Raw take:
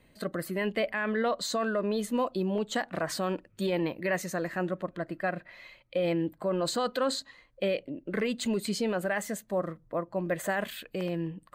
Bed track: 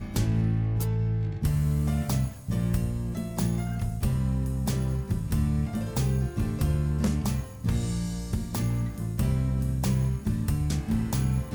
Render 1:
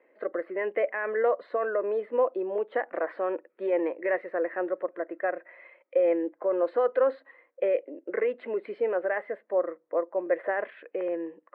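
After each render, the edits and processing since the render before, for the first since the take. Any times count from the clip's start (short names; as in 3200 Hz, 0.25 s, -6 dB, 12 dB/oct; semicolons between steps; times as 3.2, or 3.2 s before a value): elliptic band-pass 330–2100 Hz, stop band 50 dB; bell 500 Hz +9 dB 0.43 oct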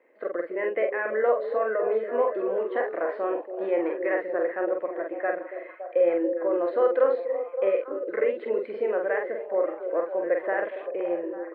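doubler 46 ms -4 dB; delay with a stepping band-pass 0.282 s, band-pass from 390 Hz, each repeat 0.7 oct, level -6 dB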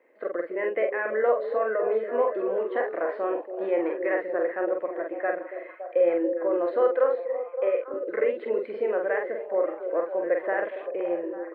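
6.9–7.94 tone controls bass -15 dB, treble -13 dB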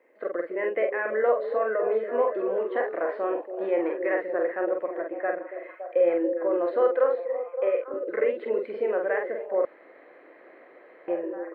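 5.01–5.63 air absorption 180 m; 9.65–11.08 room tone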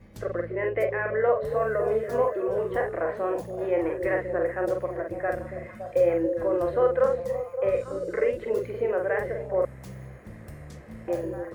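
add bed track -16.5 dB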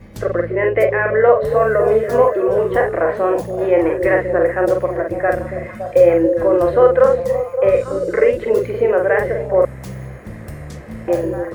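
gain +11 dB; limiter -1 dBFS, peak gain reduction 1 dB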